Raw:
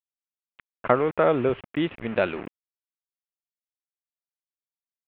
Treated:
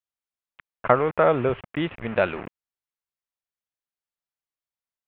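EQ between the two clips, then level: peaking EQ 300 Hz -7 dB 1.6 oct; treble shelf 3.1 kHz -10 dB; +5.0 dB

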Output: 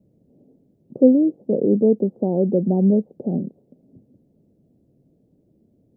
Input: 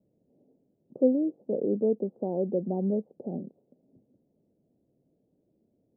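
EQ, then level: bass shelf 300 Hz +11.5 dB; +4.5 dB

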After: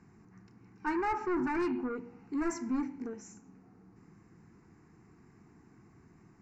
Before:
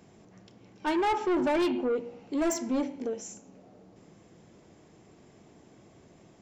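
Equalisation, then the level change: distance through air 96 m; static phaser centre 1.4 kHz, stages 4; 0.0 dB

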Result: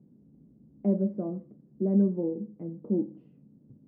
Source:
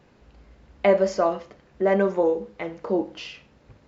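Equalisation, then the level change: Butterworth band-pass 200 Hz, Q 1.4; +4.5 dB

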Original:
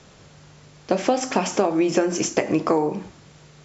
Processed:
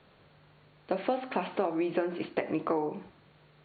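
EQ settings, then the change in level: brick-wall FIR low-pass 4.5 kHz; distance through air 150 m; bass shelf 250 Hz -6.5 dB; -7.5 dB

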